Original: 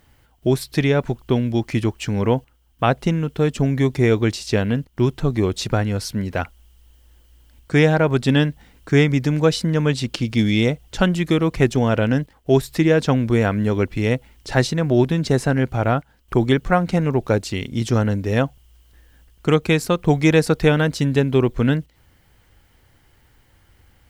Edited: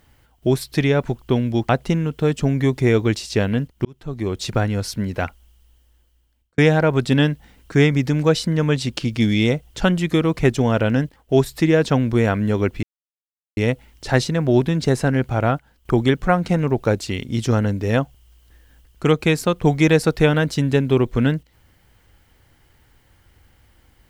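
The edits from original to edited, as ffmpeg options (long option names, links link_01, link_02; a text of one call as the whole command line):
ffmpeg -i in.wav -filter_complex "[0:a]asplit=5[link_01][link_02][link_03][link_04][link_05];[link_01]atrim=end=1.692[link_06];[link_02]atrim=start=2.858:end=5.02,asetpts=PTS-STARTPTS,afade=type=out:start_time=2.158:duration=0.004:curve=hsin[link_07];[link_03]atrim=start=5.02:end=7.75,asetpts=PTS-STARTPTS,afade=type=in:duration=0.7,afade=type=out:start_time=1.39:duration=1.34[link_08];[link_04]atrim=start=7.75:end=14,asetpts=PTS-STARTPTS,afade=type=in:duration=0.004:curve=hsin,afade=type=out:start_time=6.246:duration=0.004:curve=hsin,apad=pad_dur=0.74[link_09];[link_05]atrim=start=14,asetpts=PTS-STARTPTS,afade=type=in:duration=0.004:curve=hsin[link_10];[link_07][link_08][link_09][link_10]concat=n=4:v=0:a=1[link_11];[link_06][link_11]acrossfade=duration=0.004:curve1=hsin:curve2=hsin" out.wav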